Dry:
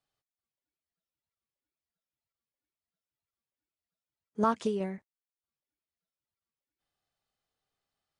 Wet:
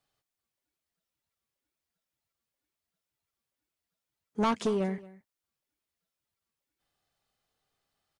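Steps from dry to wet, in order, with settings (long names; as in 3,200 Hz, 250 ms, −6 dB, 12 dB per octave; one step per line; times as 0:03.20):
soft clipping −27.5 dBFS, distortion −9 dB
single-tap delay 226 ms −20 dB
level +5.5 dB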